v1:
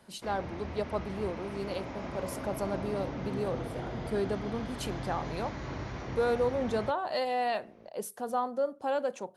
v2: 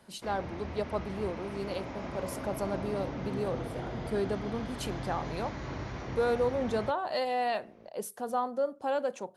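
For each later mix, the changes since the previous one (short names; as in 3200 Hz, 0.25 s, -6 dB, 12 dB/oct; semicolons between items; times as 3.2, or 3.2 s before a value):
none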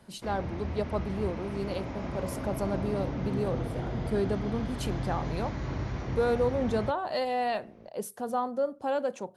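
master: add low shelf 230 Hz +8 dB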